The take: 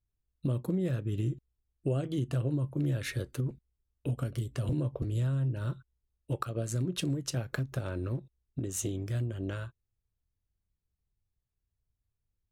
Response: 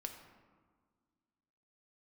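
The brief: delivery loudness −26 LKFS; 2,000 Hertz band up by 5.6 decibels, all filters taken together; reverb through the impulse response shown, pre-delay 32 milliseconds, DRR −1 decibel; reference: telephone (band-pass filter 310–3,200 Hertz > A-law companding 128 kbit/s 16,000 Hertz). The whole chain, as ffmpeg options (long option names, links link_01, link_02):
-filter_complex "[0:a]equalizer=frequency=2000:width_type=o:gain=8,asplit=2[link_01][link_02];[1:a]atrim=start_sample=2205,adelay=32[link_03];[link_02][link_03]afir=irnorm=-1:irlink=0,volume=3.5dB[link_04];[link_01][link_04]amix=inputs=2:normalize=0,highpass=310,lowpass=3200,volume=10.5dB" -ar 16000 -c:a pcm_alaw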